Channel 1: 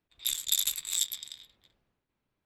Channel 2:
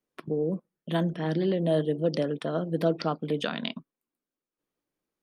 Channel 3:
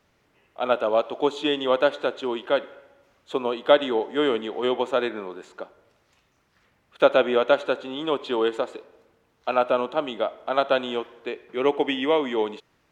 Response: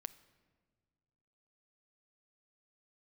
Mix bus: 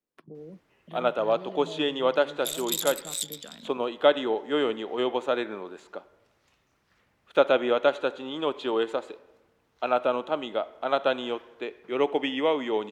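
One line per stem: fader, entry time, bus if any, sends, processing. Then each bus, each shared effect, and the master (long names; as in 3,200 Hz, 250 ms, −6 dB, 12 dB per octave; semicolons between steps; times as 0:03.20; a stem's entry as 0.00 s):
−2.5 dB, 2.20 s, no send, pitch modulation by a square or saw wave saw up 4.9 Hz, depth 100 cents
−16.5 dB, 0.00 s, no send, multiband upward and downward compressor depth 40%
−3.0 dB, 0.35 s, no send, no processing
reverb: not used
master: no processing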